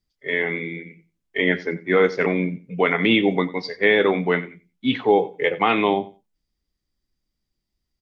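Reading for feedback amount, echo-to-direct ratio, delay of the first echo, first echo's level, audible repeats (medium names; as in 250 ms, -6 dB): 17%, -18.0 dB, 91 ms, -18.0 dB, 2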